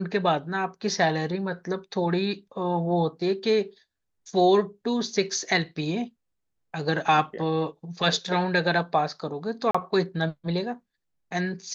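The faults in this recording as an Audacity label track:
9.710000	9.740000	gap 35 ms

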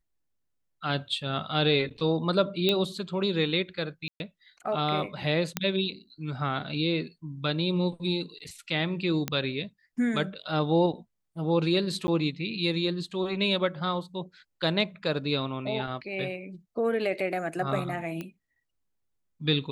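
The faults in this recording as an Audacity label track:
2.690000	2.690000	pop -12 dBFS
4.080000	4.200000	gap 0.121 s
5.570000	5.570000	pop -10 dBFS
9.280000	9.280000	pop -13 dBFS
12.070000	12.080000	gap 10 ms
18.210000	18.210000	pop -22 dBFS

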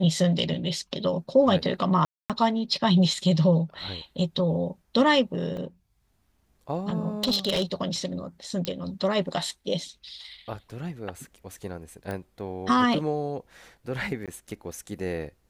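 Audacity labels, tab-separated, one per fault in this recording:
2.050000	2.300000	gap 0.247 s
5.570000	5.570000	gap 3.2 ms
7.240000	7.630000	clipped -19.5 dBFS
8.650000	8.650000	pop -13 dBFS
12.110000	12.110000	pop -21 dBFS
14.260000	14.280000	gap 17 ms

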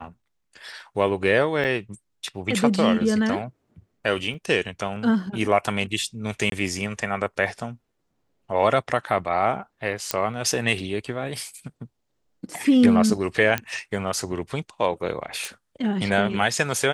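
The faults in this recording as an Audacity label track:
1.640000	1.650000	gap 7 ms
4.340000	4.340000	gap 4.2 ms
6.500000	6.520000	gap 22 ms
10.110000	10.110000	pop -5 dBFS
13.580000	13.580000	pop -9 dBFS
15.450000	15.450000	pop

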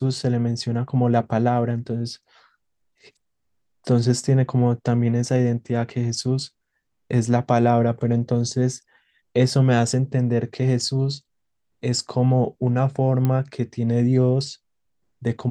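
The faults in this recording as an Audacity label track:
13.250000	13.250000	pop -11 dBFS

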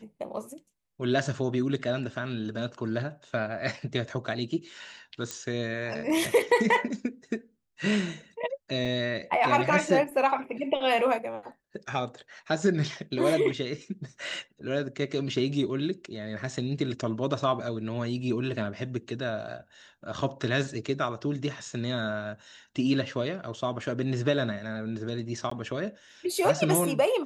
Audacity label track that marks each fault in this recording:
5.310000	5.310000	pop -18 dBFS
8.850000	8.850000	gap 4.5 ms
25.500000	25.510000	gap 14 ms

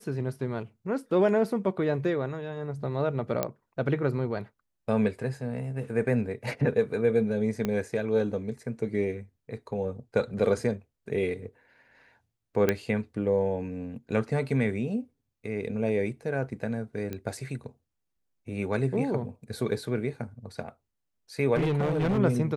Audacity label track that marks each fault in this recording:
3.430000	3.430000	pop -12 dBFS
7.650000	7.650000	pop -15 dBFS
12.690000	12.690000	pop -10 dBFS
17.130000	17.130000	pop -21 dBFS
21.550000	22.190000	clipped -22.5 dBFS

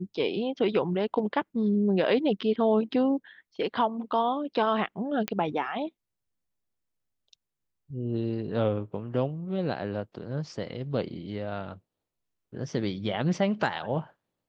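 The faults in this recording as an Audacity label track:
5.280000	5.280000	pop -12 dBFS

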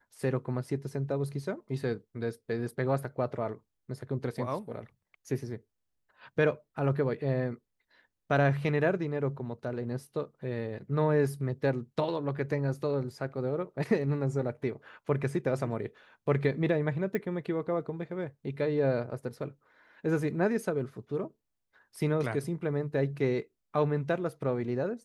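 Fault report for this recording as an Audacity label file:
17.150000	17.150000	pop -20 dBFS

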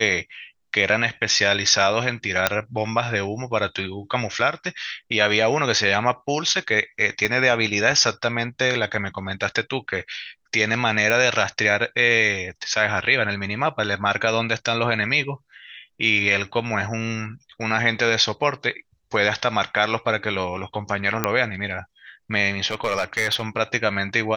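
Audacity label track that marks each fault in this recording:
2.470000	2.470000	pop -1 dBFS
7.250000	7.250000	pop -9 dBFS
11.100000	11.100000	pop -8 dBFS
21.240000	21.240000	pop -4 dBFS
22.710000	23.430000	clipped -16.5 dBFS

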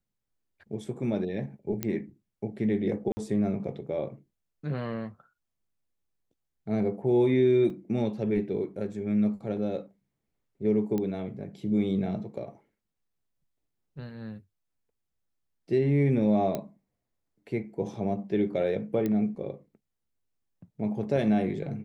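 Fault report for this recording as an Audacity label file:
1.830000	1.830000	pop -14 dBFS
3.120000	3.170000	gap 50 ms
7.700000	7.700000	gap 2.2 ms
10.980000	10.980000	pop -19 dBFS
16.550000	16.550000	pop -17 dBFS
19.060000	19.060000	pop -18 dBFS

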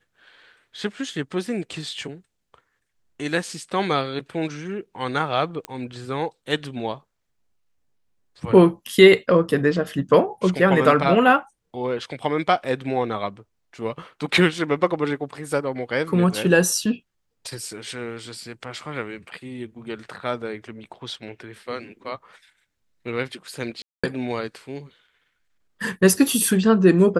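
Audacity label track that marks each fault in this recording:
5.650000	5.650000	pop -16 dBFS
23.820000	24.040000	gap 0.215 s

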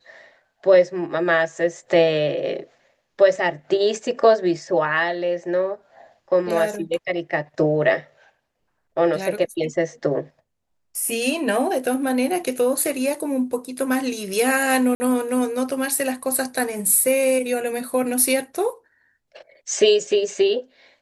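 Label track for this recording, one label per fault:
14.950000	15.000000	gap 50 ms

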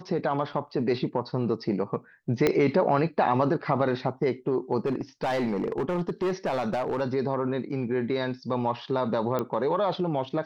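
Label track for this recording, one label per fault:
0.530000	0.530000	gap 3.5 ms
2.470000	2.470000	pop -9 dBFS
4.850000	7.020000	clipped -23 dBFS
9.390000	9.390000	pop -16 dBFS

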